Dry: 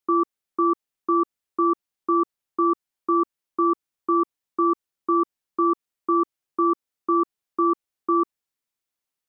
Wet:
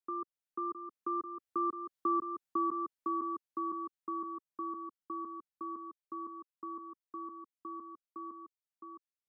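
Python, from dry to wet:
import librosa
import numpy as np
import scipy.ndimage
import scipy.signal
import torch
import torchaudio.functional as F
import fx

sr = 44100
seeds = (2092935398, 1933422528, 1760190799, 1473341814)

y = fx.doppler_pass(x, sr, speed_mps=7, closest_m=4.2, pass_at_s=2.19)
y = fx.peak_eq(y, sr, hz=370.0, db=-5.0, octaves=0.43)
y = y + 10.0 ** (-7.5 / 20.0) * np.pad(y, (int(663 * sr / 1000.0), 0))[:len(y)]
y = fx.band_squash(y, sr, depth_pct=40)
y = y * librosa.db_to_amplitude(-6.0)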